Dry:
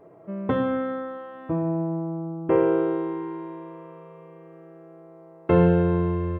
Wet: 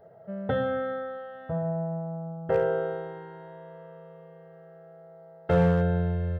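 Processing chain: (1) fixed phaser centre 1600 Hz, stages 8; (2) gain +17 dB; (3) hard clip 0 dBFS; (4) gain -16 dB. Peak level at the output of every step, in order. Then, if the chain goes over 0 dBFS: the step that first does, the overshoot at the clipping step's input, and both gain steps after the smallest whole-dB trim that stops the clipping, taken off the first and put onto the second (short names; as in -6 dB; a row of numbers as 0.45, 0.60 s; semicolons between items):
-12.0, +5.0, 0.0, -16.0 dBFS; step 2, 5.0 dB; step 2 +12 dB, step 4 -11 dB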